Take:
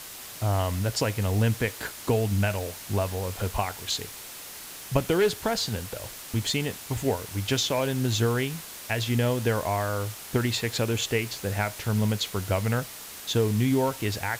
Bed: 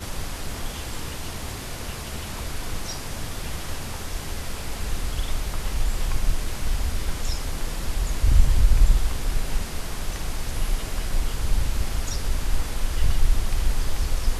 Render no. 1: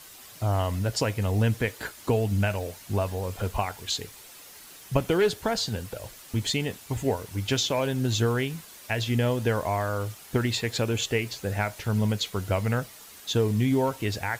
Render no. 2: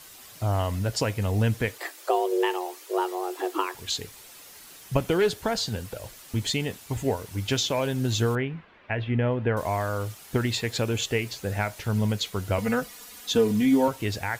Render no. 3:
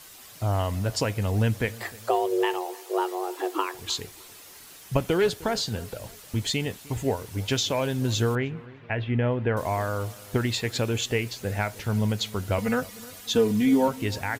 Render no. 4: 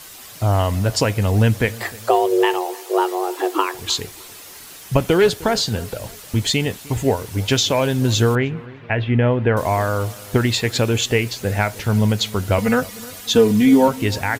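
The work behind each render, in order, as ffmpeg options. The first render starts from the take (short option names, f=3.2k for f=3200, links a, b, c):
-af "afftdn=nr=8:nf=-42"
-filter_complex "[0:a]asettb=1/sr,asplit=3[a][b][c];[a]atrim=end=1.784[d];[b]atrim=start=1.78:end=3.75,asetpts=PTS-STARTPTS,afade=t=in:d=0.004:c=qsin,afade=t=out:st=1.966:d=0.004:c=qsin,afreqshift=270[e];[c]atrim=start=3.746[f];[d][e]acrossfade=d=0.004:c1=hsin:c2=qsin[g];[g][f]acrossfade=d=0.004:c1=qsin:c2=hsin,asettb=1/sr,asplit=3[h][i][j];[h]atrim=end=8.354[k];[i]atrim=start=8.35:end=9.57,asetpts=PTS-STARTPTS,afade=t=in:d=0.004:c=qsin,afade=t=out:st=1.216:d=0.004:c=qsin,lowpass=f=2.5k:w=0.5412,lowpass=f=2.5k:w=1.3066[l];[j]atrim=start=9.566[m];[k][l]acrossfade=d=0.004:c1=hsin:c2=qsin[n];[n][m]acrossfade=d=0.004:c1=qsin:c2=hsin,asettb=1/sr,asplit=3[o][p][q];[o]atrim=end=12.584[r];[p]atrim=start=12.58:end=13.88,asetpts=PTS-STARTPTS,afade=t=in:d=0.004:c=qsin,afade=t=out:st=1.296:d=0.004:c=qsin,aecho=1:1:4.1:0.88,atrim=end_sample=57330[s];[q]atrim=start=13.876[t];[r][s]acrossfade=d=0.004:c1=hsin:c2=qsin[u];[u][t]acrossfade=d=0.004:c1=qsin:c2=hsin"
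-filter_complex "[0:a]asplit=2[a][b];[b]adelay=306,lowpass=f=1.6k:p=1,volume=-20dB,asplit=2[c][d];[d]adelay=306,lowpass=f=1.6k:p=1,volume=0.43,asplit=2[e][f];[f]adelay=306,lowpass=f=1.6k:p=1,volume=0.43[g];[a][c][e][g]amix=inputs=4:normalize=0"
-af "volume=8dB,alimiter=limit=-1dB:level=0:latency=1"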